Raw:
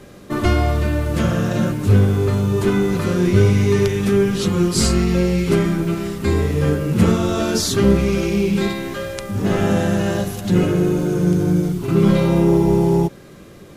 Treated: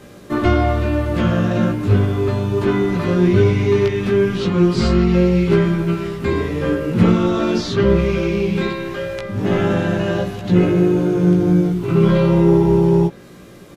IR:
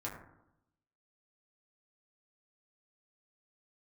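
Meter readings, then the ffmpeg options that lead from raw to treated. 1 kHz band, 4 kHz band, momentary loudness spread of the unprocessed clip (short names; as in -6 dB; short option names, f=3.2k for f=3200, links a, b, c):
+1.5 dB, -2.5 dB, 6 LU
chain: -filter_complex "[0:a]lowshelf=f=78:g=-5,acrossover=split=4300[a][b];[b]acompressor=threshold=-53dB:ratio=16[c];[a][c]amix=inputs=2:normalize=0,asplit=2[d][e];[e]adelay=17,volume=-4dB[f];[d][f]amix=inputs=2:normalize=0"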